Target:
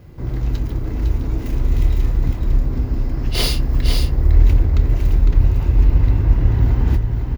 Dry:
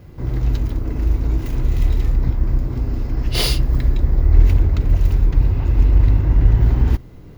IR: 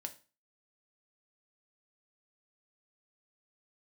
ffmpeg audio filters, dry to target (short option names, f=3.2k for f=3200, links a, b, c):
-filter_complex "[0:a]asplit=2[a][b];[b]adelay=27,volume=-13dB[c];[a][c]amix=inputs=2:normalize=0,aecho=1:1:505:0.531,volume=-1dB"